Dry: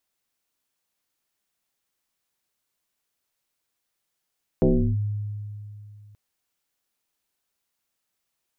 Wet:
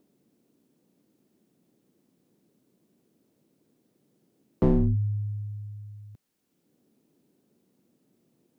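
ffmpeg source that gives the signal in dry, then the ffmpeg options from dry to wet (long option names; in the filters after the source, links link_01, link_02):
-f lavfi -i "aevalsrc='0.2*pow(10,-3*t/2.77)*sin(2*PI*104*t+3.3*clip(1-t/0.35,0,1)*sin(2*PI*1.3*104*t))':duration=1.53:sample_rate=44100"
-filter_complex "[0:a]acrossover=split=160|340[link_01][link_02][link_03];[link_02]acompressor=mode=upward:threshold=-42dB:ratio=2.5[link_04];[link_03]aeval=exprs='clip(val(0),-1,0.01)':channel_layout=same[link_05];[link_01][link_04][link_05]amix=inputs=3:normalize=0"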